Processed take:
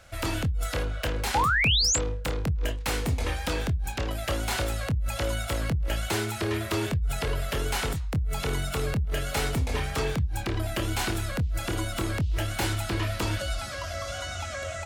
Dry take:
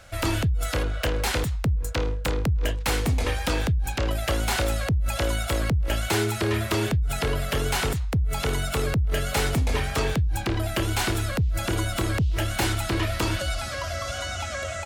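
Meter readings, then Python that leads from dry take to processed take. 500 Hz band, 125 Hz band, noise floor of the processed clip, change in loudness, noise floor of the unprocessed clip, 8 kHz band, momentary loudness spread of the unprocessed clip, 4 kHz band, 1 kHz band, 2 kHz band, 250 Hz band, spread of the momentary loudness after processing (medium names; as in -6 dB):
-3.5 dB, -3.5 dB, -35 dBFS, -2.5 dB, -32 dBFS, 0.0 dB, 3 LU, -0.5 dB, -1.5 dB, -1.5 dB, -3.5 dB, 6 LU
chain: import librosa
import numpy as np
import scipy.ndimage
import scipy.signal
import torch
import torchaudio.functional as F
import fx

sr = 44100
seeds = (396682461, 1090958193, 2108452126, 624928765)

y = fx.spec_paint(x, sr, seeds[0], shape='rise', start_s=1.34, length_s=0.63, low_hz=770.0, high_hz=7900.0, level_db=-20.0)
y = fx.chorus_voices(y, sr, voices=2, hz=0.15, base_ms=24, depth_ms=4.5, mix_pct=25)
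y = F.gain(torch.from_numpy(y), -1.5).numpy()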